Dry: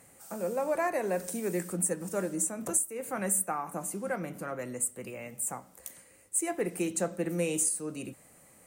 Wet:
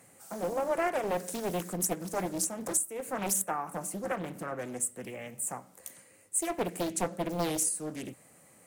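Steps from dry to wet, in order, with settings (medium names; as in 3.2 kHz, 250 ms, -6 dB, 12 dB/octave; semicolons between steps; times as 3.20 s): high-pass 87 Hz 24 dB/octave; loudspeaker Doppler distortion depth 0.98 ms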